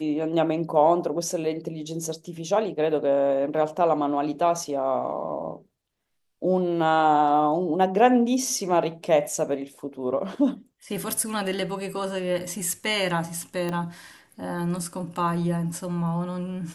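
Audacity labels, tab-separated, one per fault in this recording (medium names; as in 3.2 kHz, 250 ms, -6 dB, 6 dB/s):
13.690000	13.690000	pop -17 dBFS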